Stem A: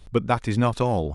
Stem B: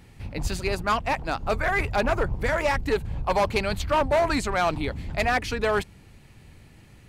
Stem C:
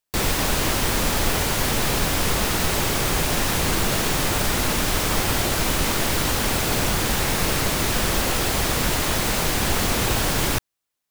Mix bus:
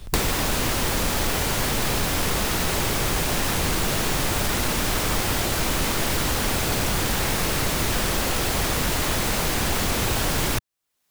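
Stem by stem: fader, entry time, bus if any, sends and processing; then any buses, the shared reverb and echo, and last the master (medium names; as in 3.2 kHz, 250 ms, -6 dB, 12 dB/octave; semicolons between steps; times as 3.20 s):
-19.0 dB, 0.00 s, no send, none
mute
-5.0 dB, 0.00 s, no send, none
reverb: none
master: waveshaping leveller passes 1; three bands compressed up and down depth 100%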